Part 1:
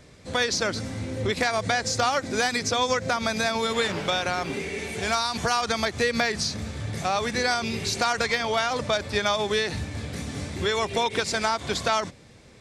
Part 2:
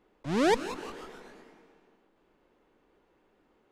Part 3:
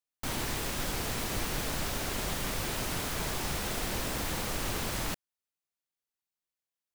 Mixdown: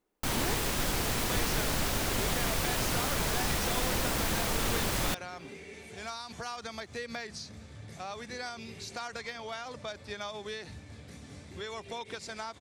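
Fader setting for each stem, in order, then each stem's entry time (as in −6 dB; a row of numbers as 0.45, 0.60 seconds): −15.0, −13.5, +3.0 decibels; 0.95, 0.00, 0.00 seconds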